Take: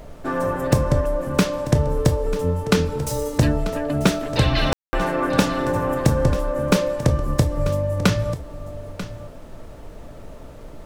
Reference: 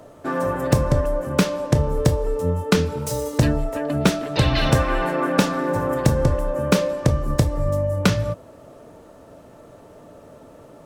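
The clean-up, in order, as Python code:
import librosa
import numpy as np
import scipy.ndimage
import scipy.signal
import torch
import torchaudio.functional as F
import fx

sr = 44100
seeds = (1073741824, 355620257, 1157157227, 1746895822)

y = fx.fix_ambience(x, sr, seeds[0], print_start_s=10.12, print_end_s=10.62, start_s=4.73, end_s=4.93)
y = fx.noise_reduce(y, sr, print_start_s=10.12, print_end_s=10.62, reduce_db=8.0)
y = fx.fix_echo_inverse(y, sr, delay_ms=940, level_db=-14.0)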